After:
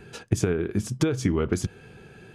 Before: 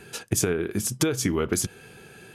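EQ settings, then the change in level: tape spacing loss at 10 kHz 22 dB; low shelf 140 Hz +7 dB; high shelf 6100 Hz +10.5 dB; 0.0 dB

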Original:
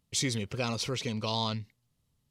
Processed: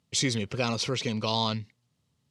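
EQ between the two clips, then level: HPF 99 Hz; LPF 8000 Hz 12 dB/oct; +4.0 dB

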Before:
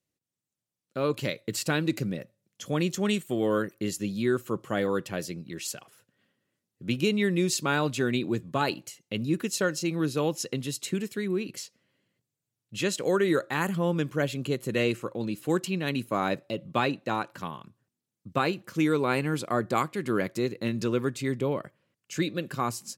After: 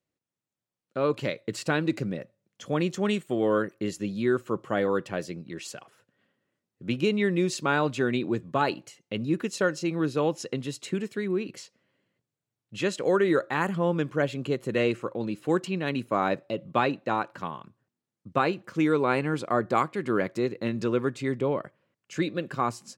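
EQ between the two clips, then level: low shelf 370 Hz -7.5 dB; high shelf 2400 Hz -12 dB; bell 13000 Hz -12.5 dB 0.37 oct; +5.5 dB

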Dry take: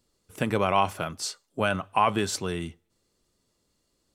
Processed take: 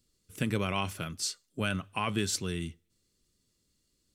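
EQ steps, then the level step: bell 790 Hz -14.5 dB 1.7 oct; 0.0 dB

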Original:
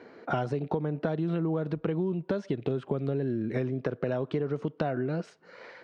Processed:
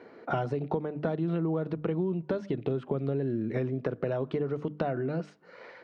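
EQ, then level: high shelf 4300 Hz -7.5 dB; notches 50/100/150/200/250/300 Hz; notch 1600 Hz, Q 25; 0.0 dB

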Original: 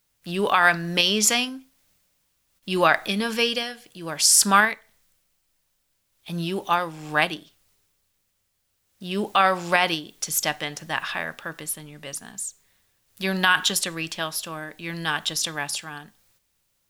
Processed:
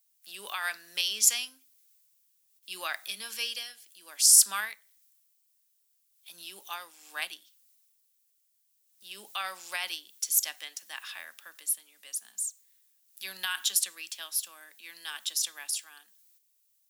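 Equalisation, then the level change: steep high-pass 180 Hz 96 dB/oct; differentiator; -2.0 dB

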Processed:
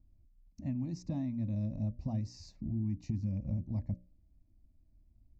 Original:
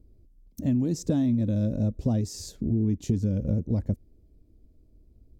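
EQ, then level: LPF 4200 Hz 12 dB/oct; notches 60/120/180/240/300/360/420/480/540/600 Hz; fixed phaser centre 2200 Hz, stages 8; -7.0 dB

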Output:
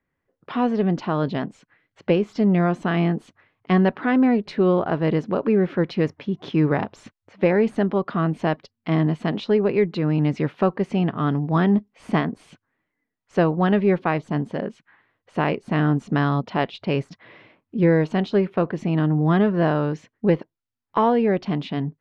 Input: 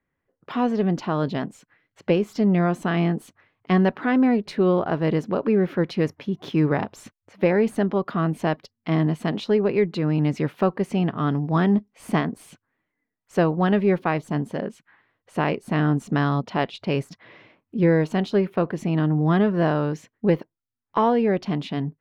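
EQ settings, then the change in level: LPF 4900 Hz 12 dB/oct; +1.0 dB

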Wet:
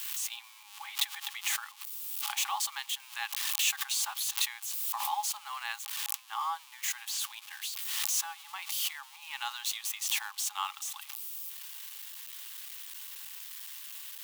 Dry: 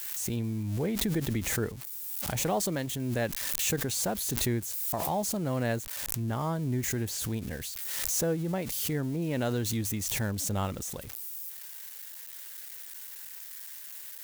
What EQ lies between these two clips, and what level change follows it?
rippled Chebyshev high-pass 800 Hz, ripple 9 dB; +7.5 dB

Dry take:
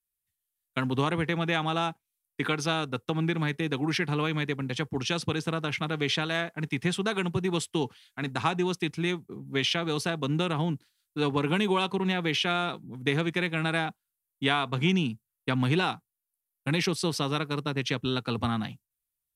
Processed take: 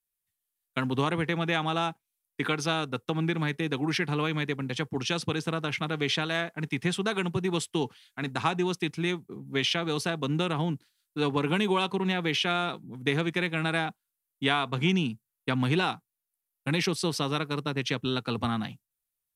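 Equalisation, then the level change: bell 66 Hz -7 dB 0.92 oct; 0.0 dB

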